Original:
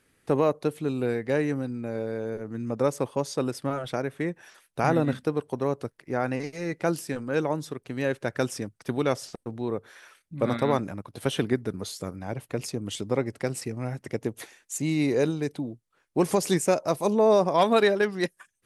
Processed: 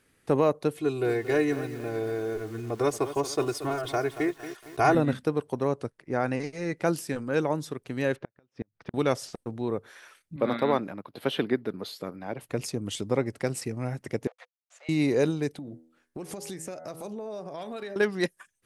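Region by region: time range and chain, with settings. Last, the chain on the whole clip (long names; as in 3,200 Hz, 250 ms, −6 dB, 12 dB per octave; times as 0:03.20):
0:00.77–0:04.95: parametric band 250 Hz −14 dB 0.22 octaves + comb filter 2.8 ms, depth 91% + feedback echo at a low word length 229 ms, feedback 55%, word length 7 bits, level −12 dB
0:05.65–0:06.77: Butterworth low-pass 11,000 Hz 96 dB per octave + one half of a high-frequency compander decoder only
0:08.16–0:08.94: gate with flip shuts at −20 dBFS, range −41 dB + high-frequency loss of the air 250 metres
0:10.36–0:12.41: high-pass filter 200 Hz + flat-topped bell 7,600 Hz −12.5 dB 1.1 octaves
0:14.27–0:14.89: centre clipping without the shift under −40 dBFS + Chebyshev high-pass with heavy ripple 490 Hz, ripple 3 dB + head-to-tape spacing loss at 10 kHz 29 dB
0:15.54–0:17.96: parametric band 990 Hz −7 dB 0.28 octaves + hum removal 81.14 Hz, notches 26 + downward compressor, threshold −35 dBFS
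whole clip: no processing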